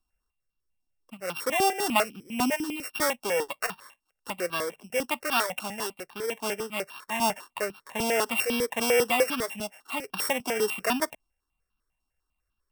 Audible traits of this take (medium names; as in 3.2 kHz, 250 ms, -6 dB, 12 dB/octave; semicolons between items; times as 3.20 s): a buzz of ramps at a fixed pitch in blocks of 16 samples; notches that jump at a steady rate 10 Hz 500–2000 Hz